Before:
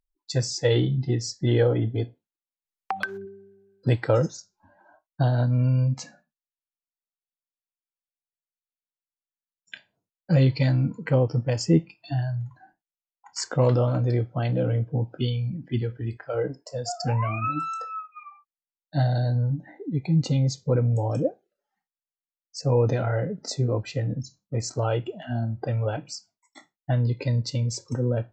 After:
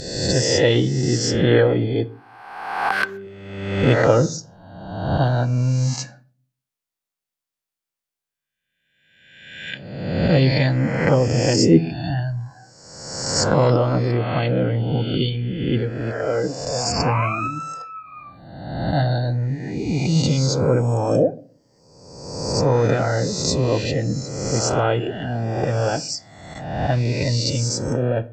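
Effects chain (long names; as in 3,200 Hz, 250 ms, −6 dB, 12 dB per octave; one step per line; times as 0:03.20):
peak hold with a rise ahead of every peak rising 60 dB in 1.27 s
0:17.47–0:18.06: drawn EQ curve 230 Hz 0 dB, 390 Hz −12 dB, 830 Hz −3 dB
harmonic and percussive parts rebalanced harmonic −7 dB
on a send: convolution reverb, pre-delay 15 ms, DRR 16 dB
on the sum: level +8 dB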